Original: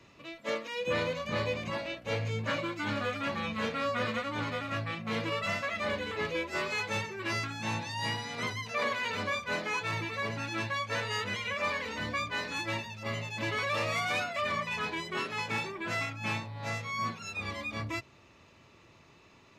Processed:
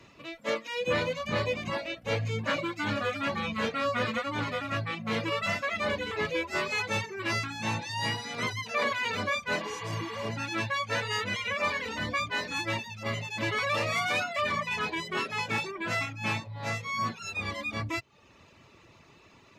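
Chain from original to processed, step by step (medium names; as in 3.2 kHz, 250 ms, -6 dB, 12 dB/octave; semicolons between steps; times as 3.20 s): reverb removal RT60 0.56 s; spectral replace 9.63–10.24 s, 830–4600 Hz after; trim +3.5 dB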